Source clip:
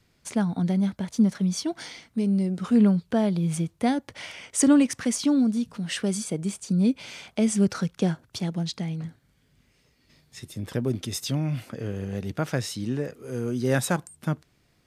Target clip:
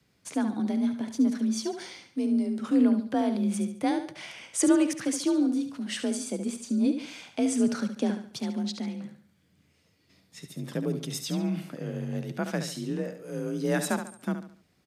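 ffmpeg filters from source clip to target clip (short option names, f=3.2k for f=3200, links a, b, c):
-af "aecho=1:1:71|142|213|284:0.355|0.131|0.0486|0.018,afreqshift=39,volume=-3.5dB"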